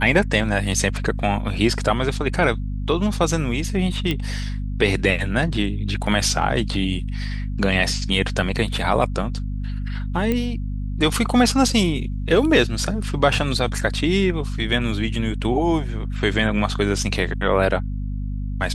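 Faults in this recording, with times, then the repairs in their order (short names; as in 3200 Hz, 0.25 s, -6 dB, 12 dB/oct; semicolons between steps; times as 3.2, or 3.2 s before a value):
hum 50 Hz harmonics 5 -26 dBFS
4.11 pop -10 dBFS
10.32 pop -10 dBFS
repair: de-click; de-hum 50 Hz, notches 5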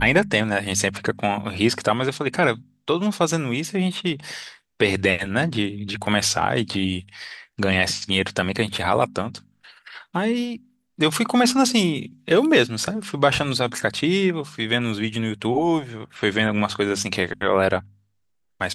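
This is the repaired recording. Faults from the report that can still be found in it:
none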